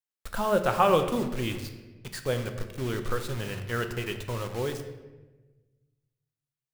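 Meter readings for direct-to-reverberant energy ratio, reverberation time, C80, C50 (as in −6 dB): 6.0 dB, 1.2 s, 10.5 dB, 9.0 dB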